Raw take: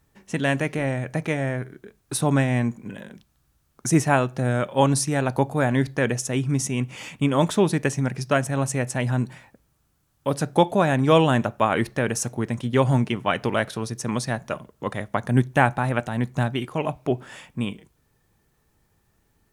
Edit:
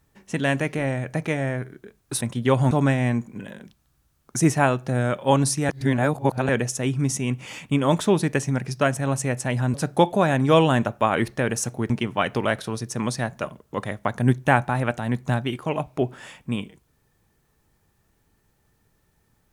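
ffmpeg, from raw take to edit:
-filter_complex "[0:a]asplit=7[a][b][c][d][e][f][g];[a]atrim=end=2.212[h];[b]atrim=start=12.488:end=12.992[i];[c]atrim=start=2.208:end=5.192[j];[d]atrim=start=5.188:end=5.992,asetpts=PTS-STARTPTS,areverse[k];[e]atrim=start=5.988:end=9.242[l];[f]atrim=start=10.328:end=12.492[m];[g]atrim=start=12.988[n];[h][i]acrossfade=d=0.004:c1=hsin:c2=hsin[o];[o][j]acrossfade=d=0.004:c1=hsin:c2=hsin[p];[p][k]acrossfade=d=0.004:c1=hsin:c2=hsin[q];[q][l]acrossfade=d=0.004:c1=hsin:c2=hsin[r];[r][m]acrossfade=d=0.004:c1=hsin:c2=hsin[s];[s][n]acrossfade=d=0.004:c1=hsin:c2=hsin"

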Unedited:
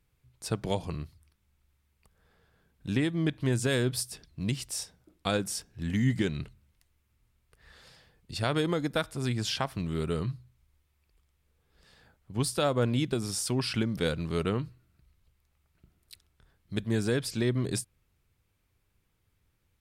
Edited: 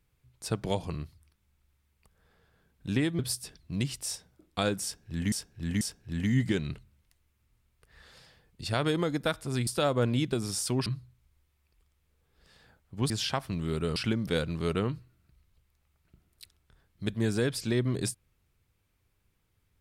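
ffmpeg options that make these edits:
-filter_complex "[0:a]asplit=8[a][b][c][d][e][f][g][h];[a]atrim=end=3.192[i];[b]atrim=start=3.868:end=6.002[j];[c]atrim=start=5.508:end=6.002[k];[d]atrim=start=5.508:end=9.372[l];[e]atrim=start=12.468:end=13.662[m];[f]atrim=start=10.228:end=12.472[n];[g]atrim=start=9.368:end=10.232[o];[h]atrim=start=13.658[p];[i][j]acrossfade=d=0.004:c1=hsin:c2=hsin[q];[q][k]acrossfade=d=0.004:c1=hsin:c2=hsin[r];[r][l]acrossfade=d=0.004:c1=hsin:c2=hsin[s];[s][m]acrossfade=d=0.004:c1=hsin:c2=hsin[t];[t][n]acrossfade=d=0.004:c1=hsin:c2=hsin[u];[u][o]acrossfade=d=0.004:c1=hsin:c2=hsin[v];[v][p]acrossfade=d=0.004:c1=hsin:c2=hsin"

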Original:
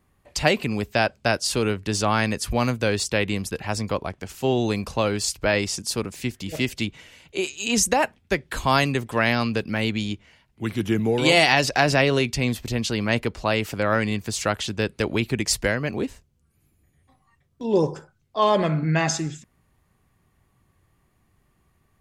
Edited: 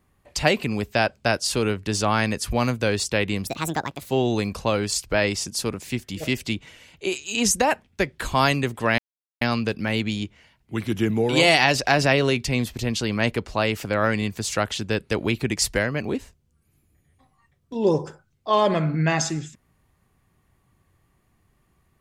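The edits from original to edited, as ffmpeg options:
-filter_complex "[0:a]asplit=4[a][b][c][d];[a]atrim=end=3.474[e];[b]atrim=start=3.47:end=4.41,asetpts=PTS-STARTPTS,asetrate=66591,aresample=44100[f];[c]atrim=start=4.406:end=9.3,asetpts=PTS-STARTPTS,afade=t=out:st=4.89:d=0.004:c=hsin,apad=pad_dur=0.43[g];[d]atrim=start=9.3,asetpts=PTS-STARTPTS,afade=t=in:d=0.004:c=hsin[h];[e][f]acrossfade=d=0.004:c1=hsin:c2=hsin[i];[g][h]concat=n=2:v=0:a=1[j];[i][j]acrossfade=d=0.004:c1=hsin:c2=hsin"

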